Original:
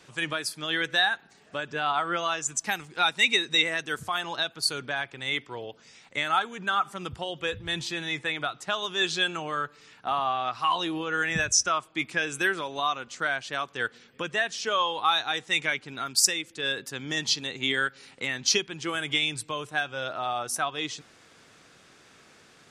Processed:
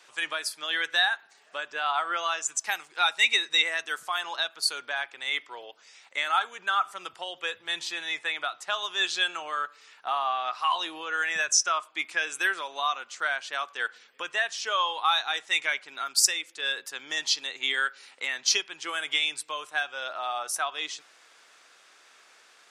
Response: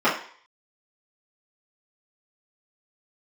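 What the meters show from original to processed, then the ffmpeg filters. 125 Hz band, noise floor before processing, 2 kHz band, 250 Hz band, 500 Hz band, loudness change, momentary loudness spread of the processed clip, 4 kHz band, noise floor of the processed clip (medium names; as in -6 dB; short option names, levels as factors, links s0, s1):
under -25 dB, -57 dBFS, 0.0 dB, -13.5 dB, -5.5 dB, -0.5 dB, 10 LU, 0.0 dB, -58 dBFS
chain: -filter_complex "[0:a]highpass=700,asplit=2[s0][s1];[1:a]atrim=start_sample=2205,afade=t=out:st=0.17:d=0.01,atrim=end_sample=7938[s2];[s1][s2]afir=irnorm=-1:irlink=0,volume=0.0141[s3];[s0][s3]amix=inputs=2:normalize=0"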